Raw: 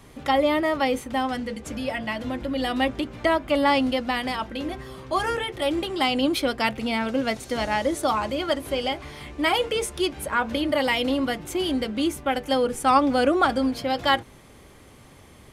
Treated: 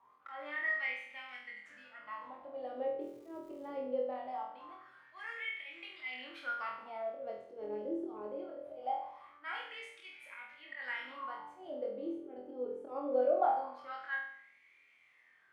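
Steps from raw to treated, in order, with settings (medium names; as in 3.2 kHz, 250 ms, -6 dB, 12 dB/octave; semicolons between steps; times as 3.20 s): slow attack 124 ms; wah-wah 0.22 Hz 390–2300 Hz, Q 10; 3.00–3.66 s: crackle 210 per s -55 dBFS; on a send: flutter echo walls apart 4.1 m, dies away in 0.62 s; on the sum: trim -3.5 dB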